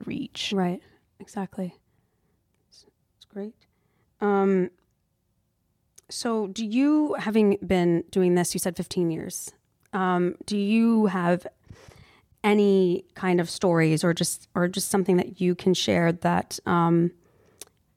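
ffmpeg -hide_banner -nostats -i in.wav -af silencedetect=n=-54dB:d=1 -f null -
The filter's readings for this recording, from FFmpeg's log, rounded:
silence_start: 4.82
silence_end: 5.96 | silence_duration: 1.14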